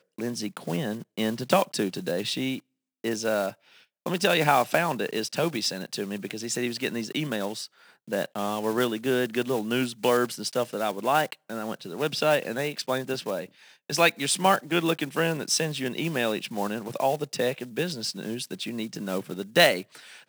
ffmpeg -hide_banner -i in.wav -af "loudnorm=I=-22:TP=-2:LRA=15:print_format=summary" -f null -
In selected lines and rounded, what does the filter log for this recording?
Input Integrated:    -27.1 LUFS
Input True Peak:      -3.2 dBTP
Input LRA:             3.9 LU
Input Threshold:     -37.3 LUFS